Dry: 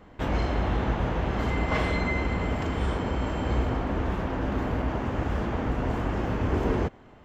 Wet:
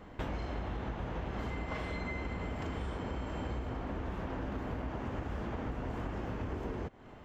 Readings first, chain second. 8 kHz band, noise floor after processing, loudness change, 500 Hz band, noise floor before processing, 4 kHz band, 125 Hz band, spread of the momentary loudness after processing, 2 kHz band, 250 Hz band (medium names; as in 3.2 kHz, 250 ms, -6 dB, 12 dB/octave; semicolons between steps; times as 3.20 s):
no reading, -51 dBFS, -11.0 dB, -11.0 dB, -51 dBFS, -11.0 dB, -11.0 dB, 1 LU, -11.0 dB, -10.5 dB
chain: compression 12:1, threshold -34 dBFS, peak gain reduction 14.5 dB